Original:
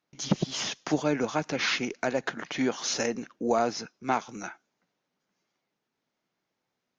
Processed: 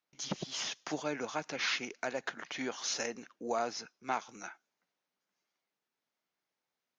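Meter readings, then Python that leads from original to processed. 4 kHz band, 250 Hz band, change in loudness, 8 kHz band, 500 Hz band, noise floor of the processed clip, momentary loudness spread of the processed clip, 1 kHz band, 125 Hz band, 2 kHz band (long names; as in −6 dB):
−5.0 dB, −12.5 dB, −7.5 dB, can't be measured, −9.0 dB, below −85 dBFS, 8 LU, −7.0 dB, −14.0 dB, −5.5 dB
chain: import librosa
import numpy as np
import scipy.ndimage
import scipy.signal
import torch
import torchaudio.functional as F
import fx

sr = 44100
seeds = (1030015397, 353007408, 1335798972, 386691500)

y = fx.low_shelf(x, sr, hz=410.0, db=-10.5)
y = y * 10.0 ** (-5.0 / 20.0)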